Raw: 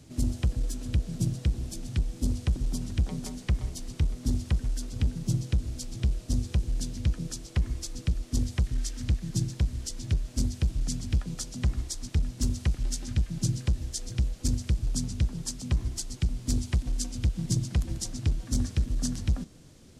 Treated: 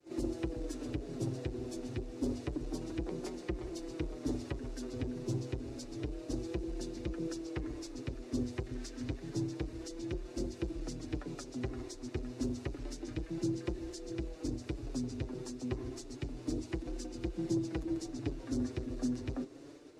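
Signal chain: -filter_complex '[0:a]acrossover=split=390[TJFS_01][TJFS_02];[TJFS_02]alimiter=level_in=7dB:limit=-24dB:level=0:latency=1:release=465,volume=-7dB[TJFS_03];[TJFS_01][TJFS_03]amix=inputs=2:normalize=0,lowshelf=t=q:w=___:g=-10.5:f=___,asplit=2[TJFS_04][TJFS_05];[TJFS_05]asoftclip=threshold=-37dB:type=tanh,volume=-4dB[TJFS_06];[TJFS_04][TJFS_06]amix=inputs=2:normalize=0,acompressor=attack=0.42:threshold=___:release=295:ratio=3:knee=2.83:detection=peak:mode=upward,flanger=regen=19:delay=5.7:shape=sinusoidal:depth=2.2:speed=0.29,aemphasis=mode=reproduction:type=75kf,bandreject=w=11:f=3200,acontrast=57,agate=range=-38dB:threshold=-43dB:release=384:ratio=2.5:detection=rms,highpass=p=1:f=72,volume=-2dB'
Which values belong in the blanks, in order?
3, 250, -44dB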